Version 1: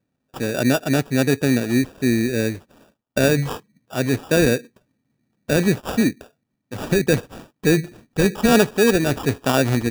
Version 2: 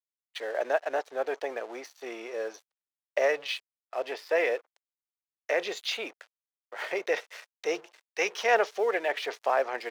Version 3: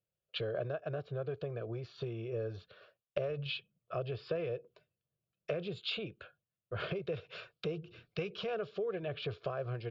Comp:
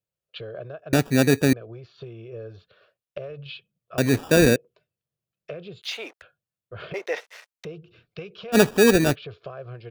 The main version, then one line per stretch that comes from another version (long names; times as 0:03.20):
3
0:00.93–0:01.53: punch in from 1
0:03.98–0:04.56: punch in from 1
0:05.82–0:06.22: punch in from 2
0:06.94–0:07.65: punch in from 2
0:08.55–0:09.13: punch in from 1, crossfade 0.06 s